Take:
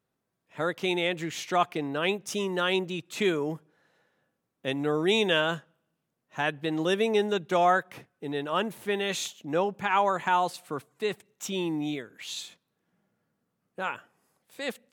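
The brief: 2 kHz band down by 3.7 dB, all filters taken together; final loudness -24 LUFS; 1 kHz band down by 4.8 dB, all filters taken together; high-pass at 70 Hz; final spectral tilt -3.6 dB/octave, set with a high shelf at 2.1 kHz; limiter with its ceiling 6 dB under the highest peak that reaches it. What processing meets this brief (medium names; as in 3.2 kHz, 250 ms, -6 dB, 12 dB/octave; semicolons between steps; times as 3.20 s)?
high-pass 70 Hz; peaking EQ 1 kHz -6.5 dB; peaking EQ 2 kHz -6.5 dB; treble shelf 2.1 kHz +5.5 dB; trim +7 dB; peak limiter -11 dBFS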